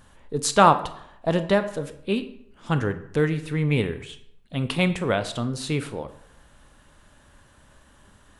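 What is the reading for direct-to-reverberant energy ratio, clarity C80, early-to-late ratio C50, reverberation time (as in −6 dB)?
10.0 dB, 16.0 dB, 13.0 dB, 0.70 s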